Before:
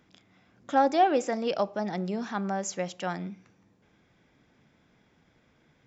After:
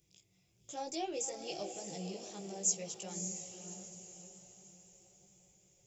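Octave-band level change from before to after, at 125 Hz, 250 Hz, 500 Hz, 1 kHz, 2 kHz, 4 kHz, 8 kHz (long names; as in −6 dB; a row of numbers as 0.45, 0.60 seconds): −10.5 dB, −14.0 dB, −14.0 dB, −19.0 dB, −17.5 dB, −4.5 dB, can't be measured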